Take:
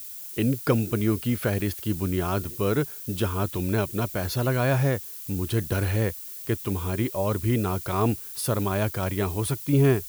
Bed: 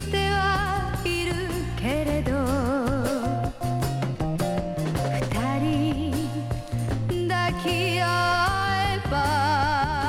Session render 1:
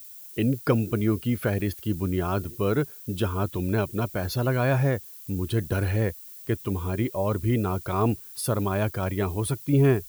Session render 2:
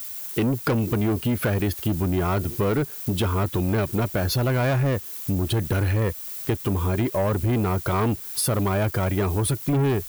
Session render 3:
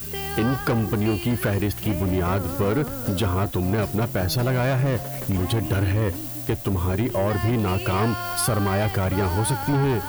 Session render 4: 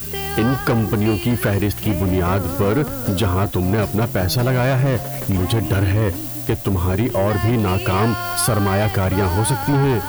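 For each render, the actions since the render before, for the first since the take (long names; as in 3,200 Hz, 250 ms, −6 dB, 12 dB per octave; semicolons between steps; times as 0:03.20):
broadband denoise 7 dB, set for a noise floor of −39 dBFS
leveller curve on the samples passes 3; downward compressor 2.5 to 1, threshold −23 dBFS, peak gain reduction 7 dB
mix in bed −8 dB
level +4.5 dB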